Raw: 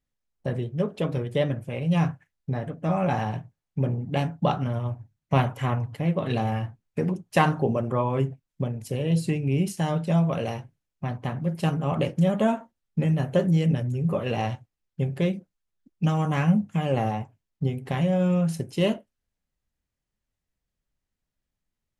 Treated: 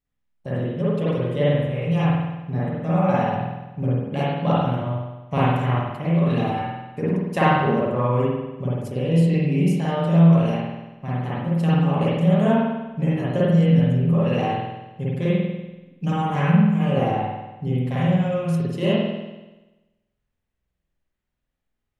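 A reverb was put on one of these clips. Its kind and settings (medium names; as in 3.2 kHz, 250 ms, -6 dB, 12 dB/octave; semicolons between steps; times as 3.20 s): spring tank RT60 1.1 s, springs 48 ms, chirp 60 ms, DRR -8 dB; trim -4.5 dB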